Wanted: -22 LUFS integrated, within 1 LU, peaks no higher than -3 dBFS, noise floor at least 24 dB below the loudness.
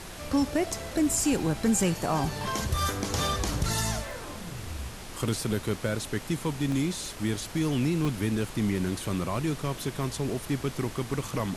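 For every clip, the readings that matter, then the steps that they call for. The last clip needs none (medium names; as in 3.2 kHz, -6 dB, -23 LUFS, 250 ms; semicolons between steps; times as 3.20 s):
dropouts 4; longest dropout 1.2 ms; noise floor -41 dBFS; noise floor target -54 dBFS; loudness -29.5 LUFS; peak level -15.0 dBFS; loudness target -22.0 LUFS
-> interpolate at 3.28/4.11/6.72/8.05 s, 1.2 ms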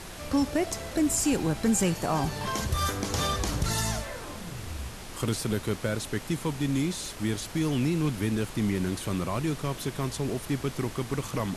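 dropouts 0; noise floor -41 dBFS; noise floor target -54 dBFS
-> noise print and reduce 13 dB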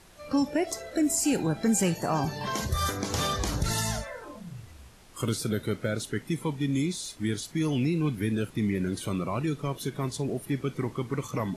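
noise floor -51 dBFS; noise floor target -53 dBFS
-> noise print and reduce 6 dB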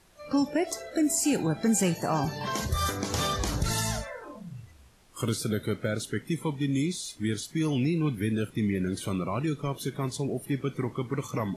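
noise floor -54 dBFS; loudness -29.0 LUFS; peak level -15.5 dBFS; loudness target -22.0 LUFS
-> trim +7 dB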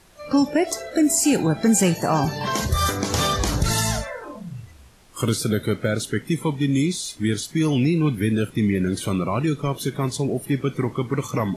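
loudness -22.0 LUFS; peak level -8.5 dBFS; noise floor -47 dBFS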